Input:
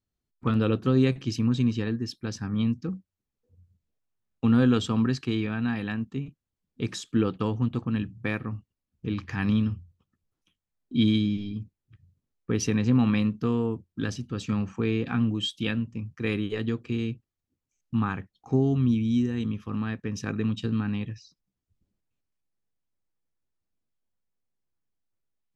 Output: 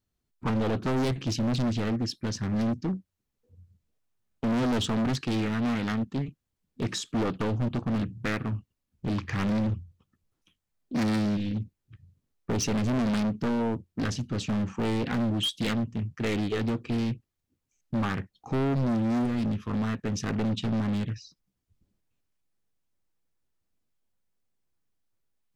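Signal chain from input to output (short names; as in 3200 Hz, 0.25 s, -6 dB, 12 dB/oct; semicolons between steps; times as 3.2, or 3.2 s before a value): hard clip -28 dBFS, distortion -5 dB; Doppler distortion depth 0.46 ms; gain +4 dB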